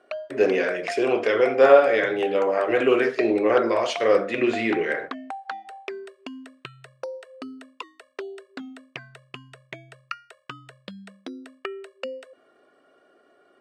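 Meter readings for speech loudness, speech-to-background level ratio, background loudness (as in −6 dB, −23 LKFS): −21.0 LKFS, 16.5 dB, −37.5 LKFS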